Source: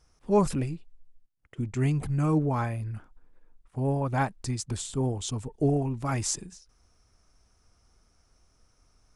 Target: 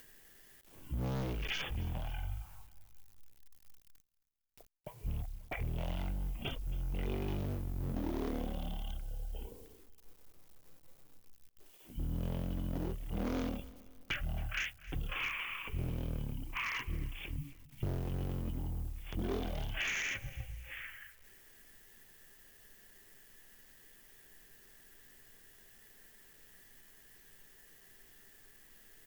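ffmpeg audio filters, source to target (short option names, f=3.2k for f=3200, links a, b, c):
-filter_complex "[0:a]volume=28dB,asoftclip=hard,volume=-28dB,acrossover=split=120|1700|6700[a][b][c][d];[a]acompressor=threshold=-44dB:ratio=4[e];[b]acompressor=threshold=-36dB:ratio=4[f];[c]acompressor=threshold=-49dB:ratio=4[g];[d]acompressor=threshold=-45dB:ratio=4[h];[e][f][g][h]amix=inputs=4:normalize=0,asetrate=13892,aresample=44100,lowshelf=f=120:g=-5,acrusher=bits=11:mix=0:aa=0.000001,aemphasis=mode=production:type=50fm,acompressor=mode=upward:threshold=-57dB:ratio=2.5,aecho=1:1:270|540|810:0.1|0.044|0.0194,volume=3dB"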